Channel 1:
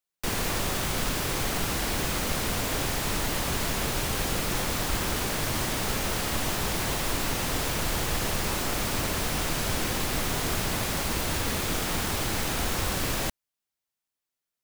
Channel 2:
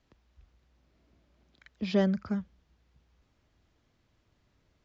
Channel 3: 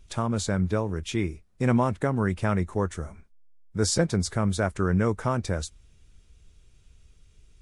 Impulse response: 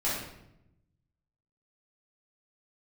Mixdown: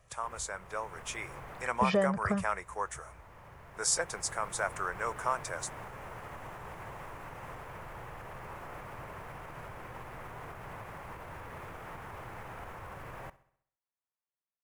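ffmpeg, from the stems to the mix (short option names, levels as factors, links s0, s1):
-filter_complex "[0:a]bass=f=250:g=-2,treble=f=4000:g=-15,alimiter=level_in=1.5:limit=0.0631:level=0:latency=1:release=165,volume=0.668,equalizer=f=11000:w=1.5:g=3.5,volume=0.158,asplit=2[s0][s1];[s1]volume=0.112[s2];[1:a]aecho=1:1:1.7:0.65,acompressor=threshold=0.0224:ratio=10,volume=1.33,asplit=2[s3][s4];[2:a]highpass=680,equalizer=f=9300:t=o:w=2.9:g=11.5,volume=0.224[s5];[s4]apad=whole_len=645276[s6];[s0][s6]sidechaincompress=threshold=0.00141:ratio=4:attack=33:release=1270[s7];[s2]aecho=0:1:66|132|198|264|330|396|462:1|0.5|0.25|0.125|0.0625|0.0312|0.0156[s8];[s7][s3][s5][s8]amix=inputs=4:normalize=0,equalizer=f=125:t=o:w=1:g=8,equalizer=f=250:t=o:w=1:g=-6,equalizer=f=500:t=o:w=1:g=4,equalizer=f=1000:t=o:w=1:g=8,equalizer=f=2000:t=o:w=1:g=4,equalizer=f=4000:t=o:w=1:g=-9,dynaudnorm=f=170:g=9:m=1.58"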